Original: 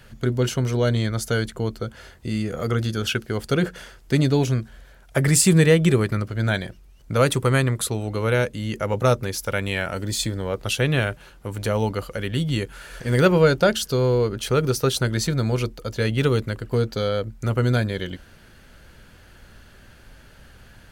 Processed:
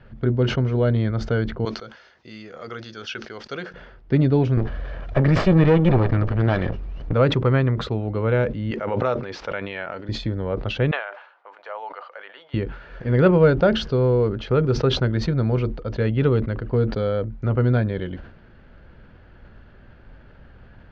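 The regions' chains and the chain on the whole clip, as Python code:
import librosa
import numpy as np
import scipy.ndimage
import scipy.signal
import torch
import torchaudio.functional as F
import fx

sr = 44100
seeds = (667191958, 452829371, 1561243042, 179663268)

y = fx.chain(x, sr, fx.highpass(hz=1500.0, slope=6),
    fx.peak_eq(hz=5900.0, db=14.0, octaves=0.91), at=(1.65, 3.74))
y = fx.chain(y, sr, fx.lower_of_two(delay_ms=1.7),
    fx.env_flatten(amount_pct=50), at=(4.57, 7.13))
y = fx.chain(y, sr, fx.median_filter(points=3),
    fx.highpass(hz=750.0, slope=6),
    fx.pre_swell(db_per_s=26.0), at=(8.71, 10.09))
y = fx.chain(y, sr, fx.highpass(hz=750.0, slope=24),
    fx.high_shelf(hz=3000.0, db=-11.5), at=(10.91, 12.54))
y = scipy.signal.sosfilt(scipy.signal.bessel(8, 2900.0, 'lowpass', norm='mag', fs=sr, output='sos'), y)
y = fx.high_shelf(y, sr, hz=2000.0, db=-11.0)
y = fx.sustainer(y, sr, db_per_s=94.0)
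y = F.gain(torch.from_numpy(y), 1.5).numpy()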